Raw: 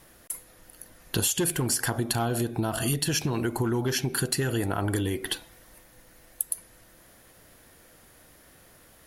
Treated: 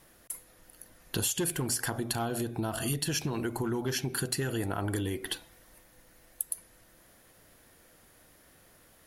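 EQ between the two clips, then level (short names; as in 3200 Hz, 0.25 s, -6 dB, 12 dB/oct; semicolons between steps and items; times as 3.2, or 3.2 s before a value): notches 60/120 Hz; -4.5 dB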